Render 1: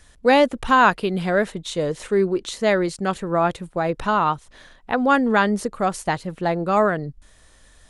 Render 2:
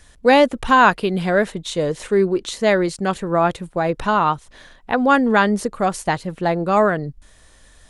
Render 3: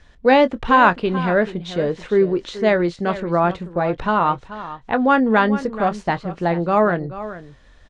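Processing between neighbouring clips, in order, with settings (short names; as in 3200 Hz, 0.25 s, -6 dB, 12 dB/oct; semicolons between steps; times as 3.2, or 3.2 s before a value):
notch 1300 Hz, Q 30; gain +2.5 dB
air absorption 170 m; doubler 23 ms -13.5 dB; echo 0.433 s -14 dB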